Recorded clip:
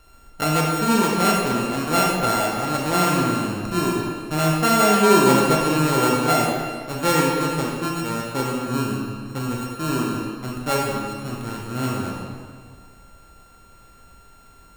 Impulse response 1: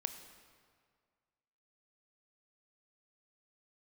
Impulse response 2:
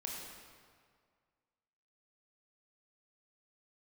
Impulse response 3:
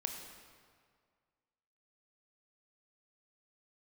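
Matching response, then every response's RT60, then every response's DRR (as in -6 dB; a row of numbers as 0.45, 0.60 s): 2; 1.9, 2.0, 1.9 s; 8.5, -2.0, 3.5 dB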